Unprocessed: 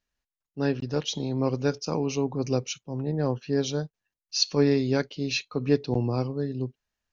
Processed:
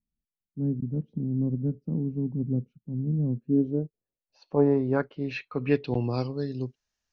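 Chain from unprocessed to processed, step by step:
low-pass filter sweep 210 Hz → 6,000 Hz, 0:03.28–0:06.58
level −1.5 dB

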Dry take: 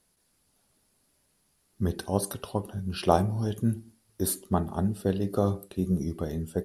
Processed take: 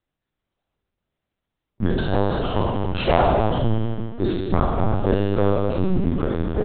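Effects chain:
peak hold with a decay on every bin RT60 1.50 s
on a send: tape delay 256 ms, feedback 39%, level −8 dB, low-pass 1,400 Hz
on the sum: leveller curve on the samples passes 3
slap from a distant wall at 23 metres, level −28 dB
linear-prediction vocoder at 8 kHz pitch kept
level −5.5 dB

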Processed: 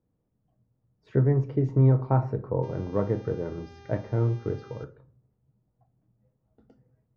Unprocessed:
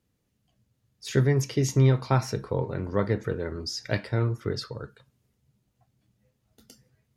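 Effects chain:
Chebyshev low-pass filter 830 Hz, order 2
0:02.62–0:04.83: hum with harmonics 400 Hz, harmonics 16, −52 dBFS −6 dB per octave
rectangular room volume 410 cubic metres, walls furnished, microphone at 0.57 metres

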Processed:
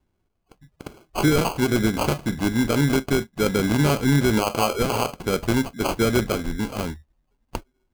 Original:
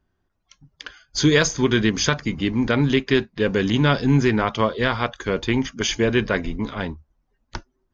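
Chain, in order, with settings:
0:04.36–0:05.19: parametric band 1,100 Hz +8 dB 2.3 octaves
brickwall limiter −10 dBFS, peak gain reduction 10.5 dB
decimation without filtering 24×

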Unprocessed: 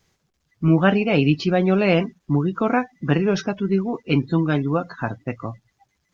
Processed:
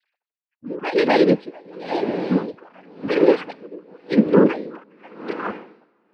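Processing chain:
three sine waves on the formant tracks
low-shelf EQ 250 Hz +7 dB
cochlear-implant simulation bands 8
on a send: feedback delay with all-pass diffusion 498 ms, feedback 41%, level −12 dB
on the sum: tremolo with a sine in dB 0.92 Hz, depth 28 dB
level +4 dB

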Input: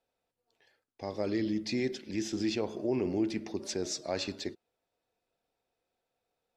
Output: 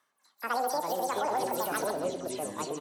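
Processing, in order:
every frequency bin delayed by itself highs early, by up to 131 ms
high-shelf EQ 8,000 Hz −5.5 dB
repeating echo 317 ms, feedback 24%, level −12 dB
on a send at −17.5 dB: convolution reverb RT60 1.2 s, pre-delay 115 ms
on the sum: wrong playback speed 33 rpm record played at 78 rpm
high-pass filter 220 Hz 12 dB per octave
delay with pitch and tempo change per echo 122 ms, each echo −6 semitones, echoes 3, each echo −6 dB
brickwall limiter −25 dBFS, peak gain reduction 7 dB
reversed playback
upward compression, threshold −49 dBFS
reversed playback
level +4 dB

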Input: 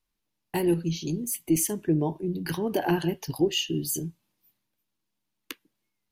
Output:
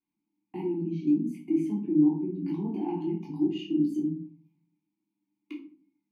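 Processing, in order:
parametric band 180 Hz +13 dB 1.4 octaves
downward compressor 2 to 1, threshold −24 dBFS, peak gain reduction 7.5 dB
brickwall limiter −17.5 dBFS, peak gain reduction 5.5 dB
formant filter u
rectangular room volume 310 cubic metres, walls furnished, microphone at 3.2 metres

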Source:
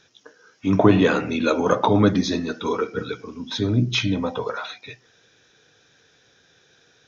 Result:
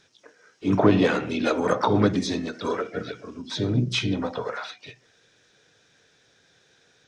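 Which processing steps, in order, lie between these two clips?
pitch-shifted copies added +3 semitones −12 dB, +4 semitones −14 dB, +7 semitones −14 dB
every ending faded ahead of time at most 250 dB per second
level −3.5 dB

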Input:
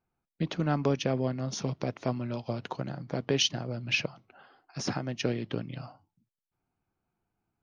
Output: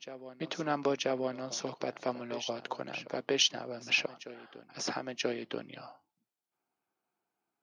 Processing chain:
high-pass filter 360 Hz 12 dB per octave
backwards echo 984 ms −13.5 dB

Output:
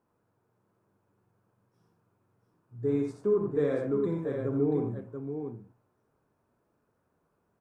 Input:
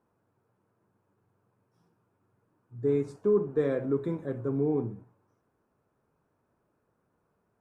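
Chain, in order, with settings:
multi-tap delay 60/85/684 ms −7.5/−6/−6.5 dB
level −2 dB

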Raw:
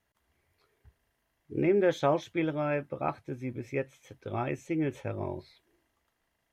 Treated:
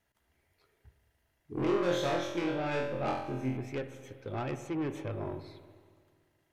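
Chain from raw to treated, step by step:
notch filter 1,100 Hz, Q 9.8
soft clipping −30 dBFS, distortion −8 dB
0:01.54–0:03.57: flutter between parallel walls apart 3.9 metres, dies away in 0.65 s
spring reverb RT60 2 s, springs 47/54 ms, chirp 25 ms, DRR 10 dB

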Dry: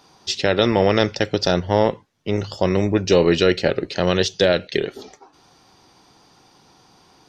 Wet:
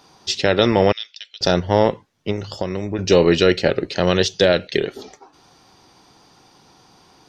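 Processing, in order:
0:00.92–0:01.41: four-pole ladder band-pass 3,800 Hz, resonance 55%
0:02.31–0:02.99: downward compressor 6 to 1, threshold −22 dBFS, peak gain reduction 9.5 dB
level +1.5 dB

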